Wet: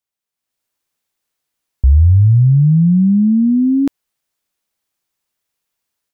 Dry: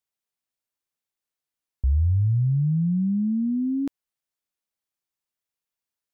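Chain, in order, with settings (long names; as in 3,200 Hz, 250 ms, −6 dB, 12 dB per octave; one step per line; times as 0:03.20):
automatic gain control gain up to 10.5 dB
level +1.5 dB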